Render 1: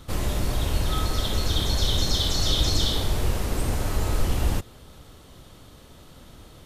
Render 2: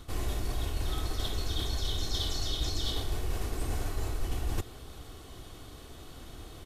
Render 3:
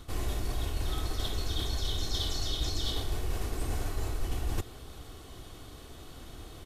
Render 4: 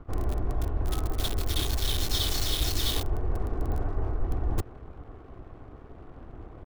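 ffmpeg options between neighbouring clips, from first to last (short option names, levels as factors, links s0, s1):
-af "aecho=1:1:2.7:0.42,areverse,acompressor=threshold=0.0398:ratio=6,areverse"
-af anull
-filter_complex "[0:a]acrossover=split=1500[s0][s1];[s0]aeval=exprs='sgn(val(0))*max(abs(val(0))-0.0015,0)':c=same[s2];[s1]acrusher=bits=5:mix=0:aa=0.000001[s3];[s2][s3]amix=inputs=2:normalize=0,volume=1.68"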